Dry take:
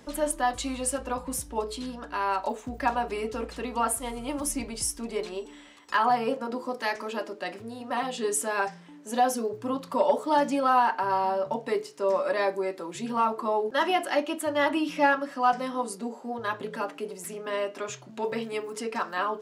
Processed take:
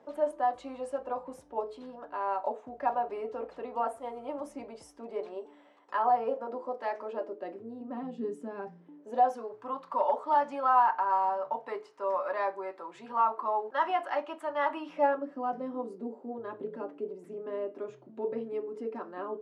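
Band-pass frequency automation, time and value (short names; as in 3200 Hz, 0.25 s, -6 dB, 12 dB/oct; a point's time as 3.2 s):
band-pass, Q 1.6
7 s 640 Hz
8.03 s 240 Hz
8.68 s 240 Hz
9.44 s 990 Hz
14.83 s 990 Hz
15.27 s 350 Hz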